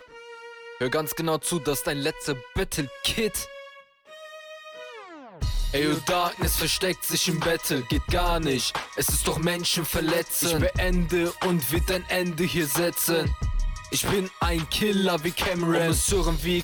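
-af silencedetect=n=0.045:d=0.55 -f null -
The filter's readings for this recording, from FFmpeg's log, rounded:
silence_start: 0.00
silence_end: 0.81 | silence_duration: 0.81
silence_start: 3.43
silence_end: 5.42 | silence_duration: 1.99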